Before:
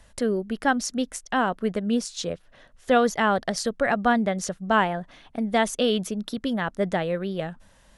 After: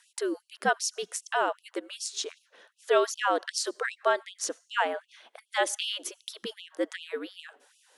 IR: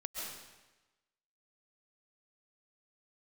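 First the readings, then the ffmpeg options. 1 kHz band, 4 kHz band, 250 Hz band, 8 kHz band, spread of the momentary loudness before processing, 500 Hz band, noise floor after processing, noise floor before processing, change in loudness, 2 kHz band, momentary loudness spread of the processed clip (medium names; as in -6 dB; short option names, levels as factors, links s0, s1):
-5.5 dB, -1.0 dB, -15.0 dB, +0.5 dB, 10 LU, -5.0 dB, -71 dBFS, -56 dBFS, -5.5 dB, -4.0 dB, 12 LU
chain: -filter_complex "[0:a]bass=f=250:g=-9,treble=f=4000:g=3,afreqshift=-75,asplit=2[s0][s1];[1:a]atrim=start_sample=2205,asetrate=74970,aresample=44100[s2];[s1][s2]afir=irnorm=-1:irlink=0,volume=0.0841[s3];[s0][s3]amix=inputs=2:normalize=0,afftfilt=real='re*gte(b*sr/1024,200*pow(2600/200,0.5+0.5*sin(2*PI*2.6*pts/sr)))':imag='im*gte(b*sr/1024,200*pow(2600/200,0.5+0.5*sin(2*PI*2.6*pts/sr)))':win_size=1024:overlap=0.75,volume=0.75"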